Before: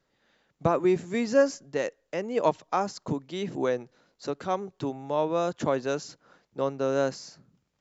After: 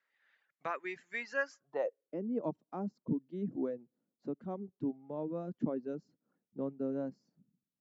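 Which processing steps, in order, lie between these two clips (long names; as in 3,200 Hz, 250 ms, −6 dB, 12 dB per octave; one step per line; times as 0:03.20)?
band-pass filter sweep 1,900 Hz → 230 Hz, 0:01.46–0:02.23
reverb reduction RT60 1.1 s
level +1 dB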